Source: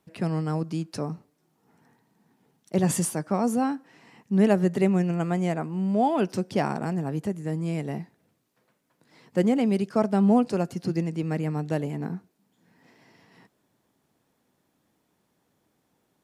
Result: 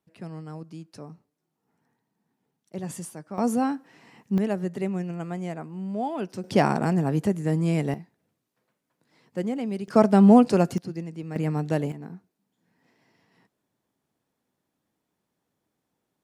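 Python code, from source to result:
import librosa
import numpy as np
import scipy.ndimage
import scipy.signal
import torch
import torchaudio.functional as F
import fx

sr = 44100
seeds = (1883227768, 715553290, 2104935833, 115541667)

y = fx.gain(x, sr, db=fx.steps((0.0, -11.0), (3.38, 0.5), (4.38, -6.5), (6.44, 5.0), (7.94, -6.5), (9.88, 5.5), (10.78, -7.0), (11.36, 2.0), (11.92, -8.0)))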